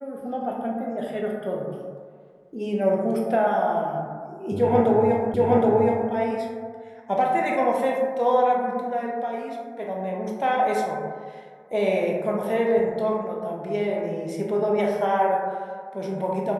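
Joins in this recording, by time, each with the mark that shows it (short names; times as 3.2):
5.34 repeat of the last 0.77 s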